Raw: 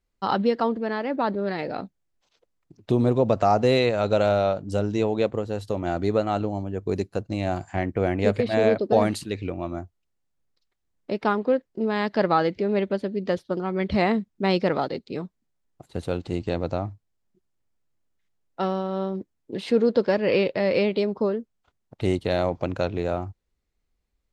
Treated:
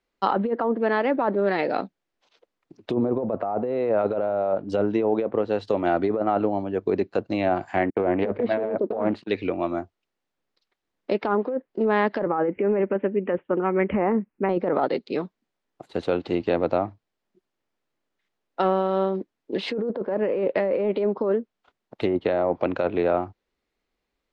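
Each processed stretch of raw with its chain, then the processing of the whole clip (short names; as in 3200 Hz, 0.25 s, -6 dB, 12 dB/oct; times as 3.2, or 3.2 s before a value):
7.9–9.32 gate -36 dBFS, range -33 dB + Doppler distortion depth 0.22 ms
12.26–14.49 steep low-pass 2800 Hz 72 dB/oct + notch 670 Hz, Q 7.1
whole clip: treble ducked by the level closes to 1100 Hz, closed at -18 dBFS; three-band isolator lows -16 dB, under 220 Hz, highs -13 dB, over 4900 Hz; negative-ratio compressor -26 dBFS, ratio -1; gain +4 dB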